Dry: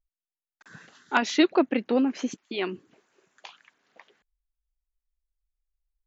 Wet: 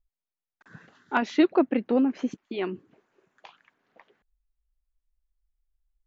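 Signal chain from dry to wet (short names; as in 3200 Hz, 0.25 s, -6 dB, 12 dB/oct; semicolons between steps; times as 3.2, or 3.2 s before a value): LPF 1500 Hz 6 dB/oct; low shelf 120 Hz +6.5 dB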